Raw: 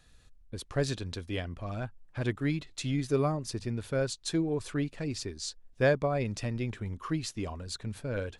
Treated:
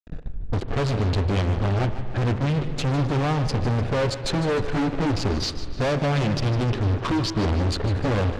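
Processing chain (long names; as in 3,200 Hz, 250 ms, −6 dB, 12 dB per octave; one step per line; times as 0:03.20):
adaptive Wiener filter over 41 samples
0:05.40–0:07.53: flat-topped bell 4,300 Hz +12 dB 1.2 octaves
downward compressor, threshold −35 dBFS, peak gain reduction 14 dB
flanger 0.32 Hz, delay 5.9 ms, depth 5.7 ms, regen −3%
fuzz pedal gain 58 dB, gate −60 dBFS
high-frequency loss of the air 96 metres
spring reverb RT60 3.3 s, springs 41 ms, chirp 75 ms, DRR 12 dB
feedback echo with a swinging delay time 151 ms, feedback 48%, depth 82 cents, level −13.5 dB
level −7.5 dB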